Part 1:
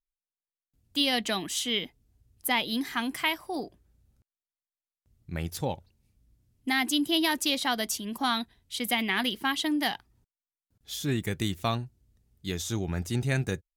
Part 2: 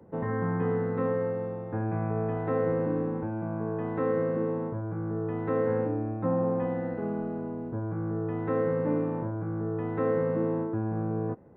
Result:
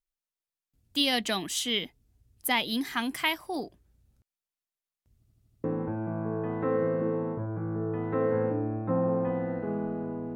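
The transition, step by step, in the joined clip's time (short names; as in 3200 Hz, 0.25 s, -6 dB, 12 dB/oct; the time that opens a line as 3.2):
part 1
5.16 stutter in place 0.08 s, 6 plays
5.64 switch to part 2 from 2.99 s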